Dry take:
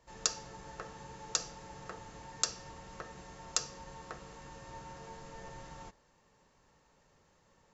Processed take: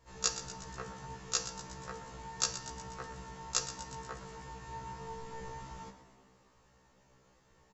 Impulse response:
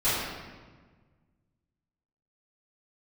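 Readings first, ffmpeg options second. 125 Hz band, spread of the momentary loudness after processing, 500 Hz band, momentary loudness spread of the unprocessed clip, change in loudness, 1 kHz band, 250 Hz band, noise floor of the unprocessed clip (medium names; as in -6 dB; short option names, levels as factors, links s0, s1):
+4.0 dB, 13 LU, +2.0 dB, 15 LU, +1.5 dB, +3.0 dB, +2.5 dB, -69 dBFS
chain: -filter_complex "[0:a]lowshelf=f=170:g=3,asplit=8[s0][s1][s2][s3][s4][s5][s6][s7];[s1]adelay=121,afreqshift=55,volume=0.237[s8];[s2]adelay=242,afreqshift=110,volume=0.14[s9];[s3]adelay=363,afreqshift=165,volume=0.0822[s10];[s4]adelay=484,afreqshift=220,volume=0.049[s11];[s5]adelay=605,afreqshift=275,volume=0.0288[s12];[s6]adelay=726,afreqshift=330,volume=0.017[s13];[s7]adelay=847,afreqshift=385,volume=0.01[s14];[s0][s8][s9][s10][s11][s12][s13][s14]amix=inputs=8:normalize=0,asplit=2[s15][s16];[1:a]atrim=start_sample=2205,adelay=36[s17];[s16][s17]afir=irnorm=-1:irlink=0,volume=0.0266[s18];[s15][s18]amix=inputs=2:normalize=0,afftfilt=real='re*1.73*eq(mod(b,3),0)':imag='im*1.73*eq(mod(b,3),0)':win_size=2048:overlap=0.75,volume=1.41"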